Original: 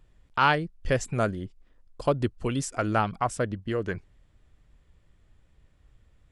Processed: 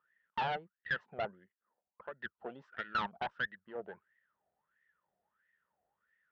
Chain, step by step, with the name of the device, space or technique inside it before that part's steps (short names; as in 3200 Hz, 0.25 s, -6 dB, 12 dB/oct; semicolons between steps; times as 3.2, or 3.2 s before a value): 1.26–2.2 LPF 1400 Hz; wah-wah guitar rig (wah 1.5 Hz 700–1900 Hz, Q 15; tube stage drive 41 dB, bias 0.65; speaker cabinet 92–3400 Hz, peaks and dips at 110 Hz -10 dB, 200 Hz +5 dB, 290 Hz -9 dB, 740 Hz -8 dB, 1100 Hz -9 dB, 2300 Hz -8 dB); gain +16 dB